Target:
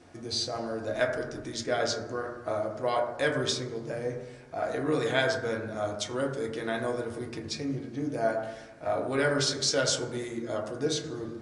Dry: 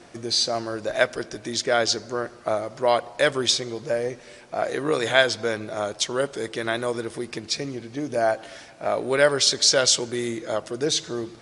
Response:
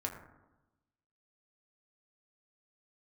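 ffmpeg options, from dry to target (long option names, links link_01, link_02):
-filter_complex "[0:a]lowshelf=frequency=250:gain=7[link_01];[1:a]atrim=start_sample=2205[link_02];[link_01][link_02]afir=irnorm=-1:irlink=0,volume=-8.5dB"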